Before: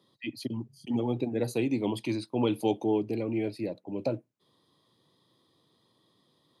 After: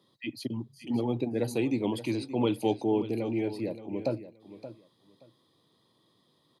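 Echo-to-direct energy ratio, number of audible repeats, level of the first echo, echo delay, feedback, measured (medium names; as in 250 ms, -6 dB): -13.5 dB, 2, -13.5 dB, 575 ms, 19%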